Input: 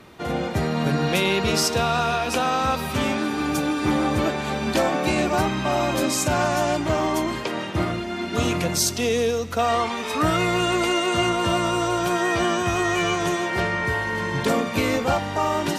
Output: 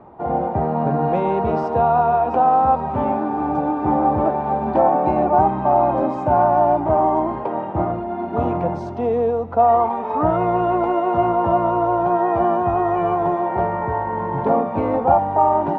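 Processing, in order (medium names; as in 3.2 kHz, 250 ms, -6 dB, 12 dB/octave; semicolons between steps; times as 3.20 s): resonant low-pass 830 Hz, resonance Q 4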